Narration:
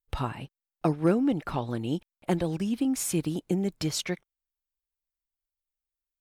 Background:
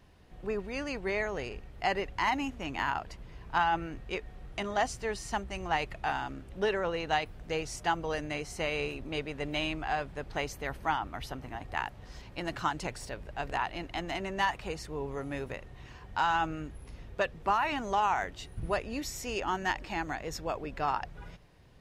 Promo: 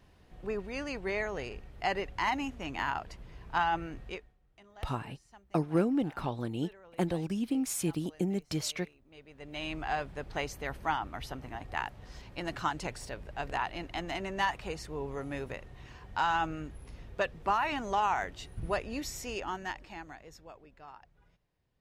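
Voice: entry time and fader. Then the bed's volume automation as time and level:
4.70 s, -4.0 dB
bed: 4.09 s -1.5 dB
4.38 s -23.5 dB
9.04 s -23.5 dB
9.78 s -1 dB
19.16 s -1 dB
20.82 s -20 dB

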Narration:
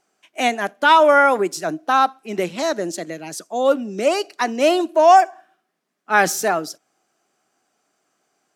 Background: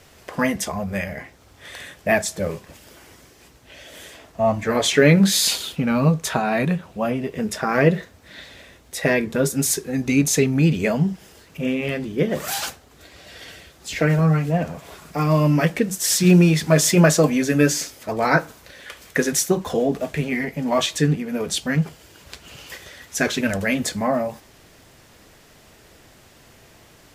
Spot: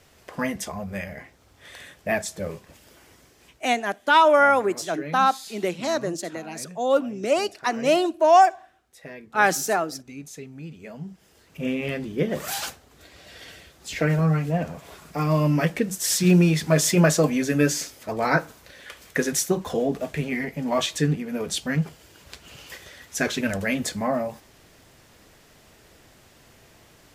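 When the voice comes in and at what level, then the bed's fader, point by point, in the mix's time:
3.25 s, -3.5 dB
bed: 3.49 s -6 dB
3.93 s -21.5 dB
10.79 s -21.5 dB
11.66 s -3.5 dB

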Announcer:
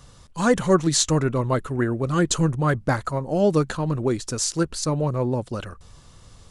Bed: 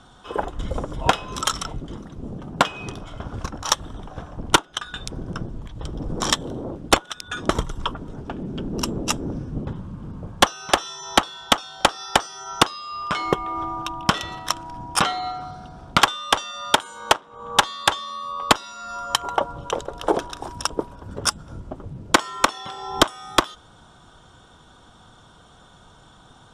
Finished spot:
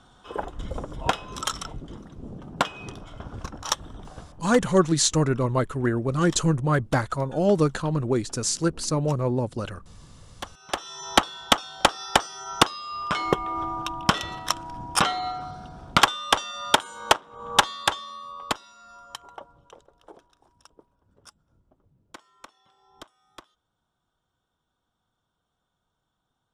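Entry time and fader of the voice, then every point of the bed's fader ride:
4.05 s, -1.0 dB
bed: 4.13 s -5.5 dB
4.6 s -21.5 dB
10.42 s -21.5 dB
11 s -1.5 dB
17.63 s -1.5 dB
20.21 s -29 dB

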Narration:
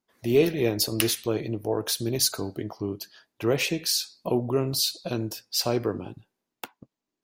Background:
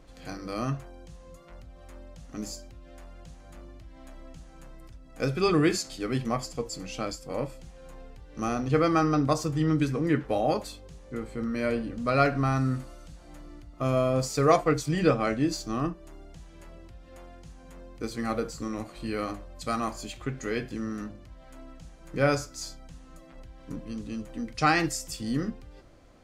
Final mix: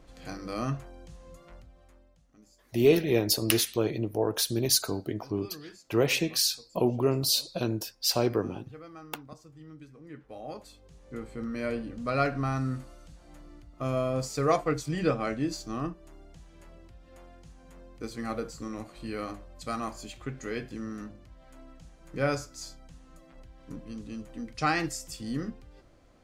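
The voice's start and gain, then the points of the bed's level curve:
2.50 s, -0.5 dB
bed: 1.48 s -1 dB
2.45 s -23.5 dB
9.96 s -23.5 dB
11.11 s -4 dB

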